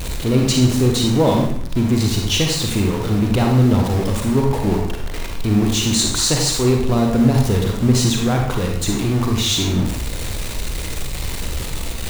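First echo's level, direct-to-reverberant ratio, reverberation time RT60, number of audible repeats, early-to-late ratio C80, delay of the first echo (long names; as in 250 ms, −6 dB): no echo audible, 1.0 dB, 0.65 s, no echo audible, 6.5 dB, no echo audible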